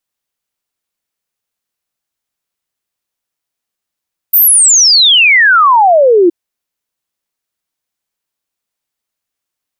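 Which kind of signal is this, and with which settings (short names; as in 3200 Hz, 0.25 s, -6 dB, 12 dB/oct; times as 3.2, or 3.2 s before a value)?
log sweep 15000 Hz -> 330 Hz 1.97 s -3.5 dBFS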